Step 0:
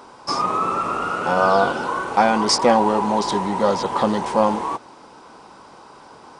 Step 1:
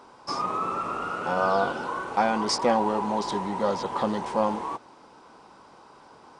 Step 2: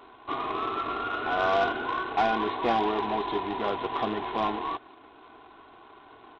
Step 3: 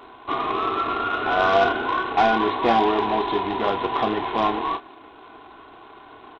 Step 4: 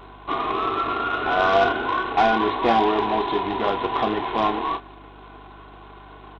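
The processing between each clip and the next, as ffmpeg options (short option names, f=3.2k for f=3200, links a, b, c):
-af "highshelf=f=7.2k:g=-4.5,volume=-7dB"
-af "aecho=1:1:2.8:0.84,aresample=8000,acrusher=bits=2:mode=log:mix=0:aa=0.000001,aresample=44100,asoftclip=type=tanh:threshold=-13dB,volume=-2.5dB"
-filter_complex "[0:a]asplit=2[a][b];[b]adelay=31,volume=-10dB[c];[a][c]amix=inputs=2:normalize=0,volume=6dB"
-af "aeval=exprs='val(0)+0.00447*(sin(2*PI*50*n/s)+sin(2*PI*2*50*n/s)/2+sin(2*PI*3*50*n/s)/3+sin(2*PI*4*50*n/s)/4+sin(2*PI*5*50*n/s)/5)':c=same"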